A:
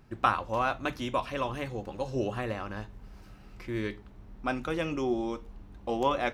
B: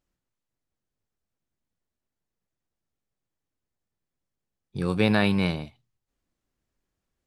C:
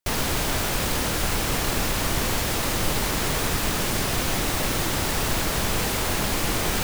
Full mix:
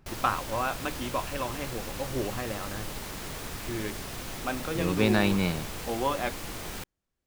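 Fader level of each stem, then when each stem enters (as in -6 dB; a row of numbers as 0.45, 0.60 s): -1.5, -2.5, -13.5 dB; 0.00, 0.00, 0.00 s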